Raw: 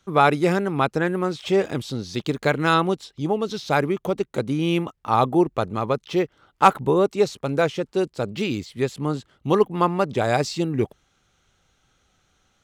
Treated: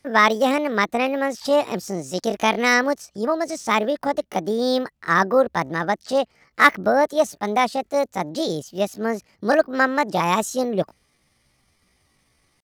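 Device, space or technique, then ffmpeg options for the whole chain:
chipmunk voice: -af "asetrate=66075,aresample=44100,atempo=0.66742,volume=1dB"

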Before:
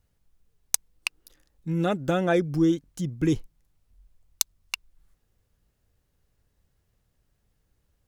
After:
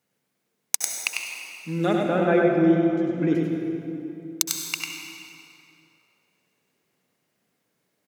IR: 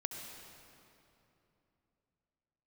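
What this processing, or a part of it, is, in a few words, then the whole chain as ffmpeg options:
PA in a hall: -filter_complex "[0:a]asettb=1/sr,asplit=3[link_01][link_02][link_03];[link_01]atrim=end=1.984[link_04];[link_02]atrim=start=1.98:end=3.35,asetpts=PTS-STARTPTS,afade=type=in:duration=0.004:curve=qsin,afade=type=out:start_time=1.366:duration=0.004:curve=qsin,lowpass=2100[link_05];[link_03]atrim=start=3.346[link_06];[link_04][link_05]acrossfade=duration=0.004:curve1=hsin:curve2=qsin[link_07];[link_07][link_06]acrossfade=duration=0.004:curve1=qsin:curve2=hsin,highpass=frequency=180:width=0.5412,highpass=frequency=180:width=1.3066,equalizer=frequency=2200:width_type=o:width=0.28:gain=5,aecho=1:1:98:0.562[link_08];[1:a]atrim=start_sample=2205[link_09];[link_08][link_09]afir=irnorm=-1:irlink=0,volume=3dB"

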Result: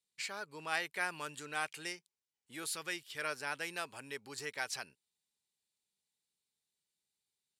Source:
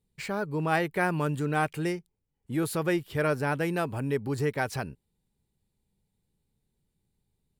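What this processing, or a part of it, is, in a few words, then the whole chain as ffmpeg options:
piezo pickup straight into a mixer: -filter_complex "[0:a]lowpass=6100,aderivative,asettb=1/sr,asplit=3[link_01][link_02][link_03];[link_01]atrim=end=2.664[link_04];[link_02]atrim=start=2.66:end=3.22,asetpts=PTS-STARTPTS,afade=type=in:duration=0.004:curve=qsin,afade=type=out:start_time=0.556:duration=0.004:curve=qsin,equalizer=frequency=700:width=0.89:gain=-4.5[link_05];[link_03]atrim=start=3.216[link_06];[link_04][link_05]acrossfade=duration=0.004:curve1=hsin:curve2=qsin[link_07];[link_07][link_06]acrossfade=duration=0.004:curve1=qsin:curve2=hsin,volume=6.5dB"

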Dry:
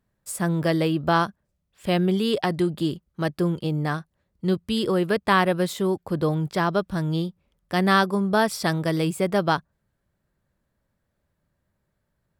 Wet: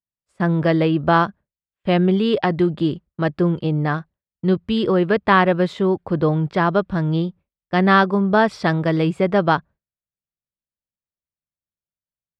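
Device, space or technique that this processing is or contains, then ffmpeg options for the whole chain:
hearing-loss simulation: -af "lowpass=2900,agate=range=-33dB:threshold=-38dB:ratio=3:detection=peak,volume=5dB"

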